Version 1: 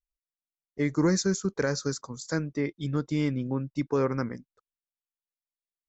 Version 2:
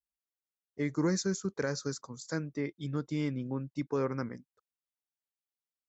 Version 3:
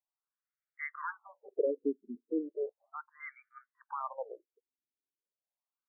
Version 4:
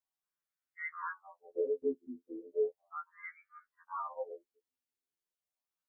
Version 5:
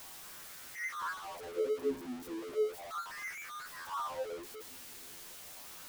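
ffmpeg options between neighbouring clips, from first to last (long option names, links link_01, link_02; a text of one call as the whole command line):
ffmpeg -i in.wav -af "highpass=65,volume=-5.5dB" out.wav
ffmpeg -i in.wav -af "afftfilt=real='re*between(b*sr/1024,300*pow(1700/300,0.5+0.5*sin(2*PI*0.36*pts/sr))/1.41,300*pow(1700/300,0.5+0.5*sin(2*PI*0.36*pts/sr))*1.41)':imag='im*between(b*sr/1024,300*pow(1700/300,0.5+0.5*sin(2*PI*0.36*pts/sr))/1.41,300*pow(1700/300,0.5+0.5*sin(2*PI*0.36*pts/sr))*1.41)':win_size=1024:overlap=0.75,volume=5dB" out.wav
ffmpeg -i in.wav -af "afftfilt=real='re*2*eq(mod(b,4),0)':imag='im*2*eq(mod(b,4),0)':win_size=2048:overlap=0.75,volume=1.5dB" out.wav
ffmpeg -i in.wav -af "aeval=exprs='val(0)+0.5*0.0119*sgn(val(0))':channel_layout=same,volume=-1.5dB" out.wav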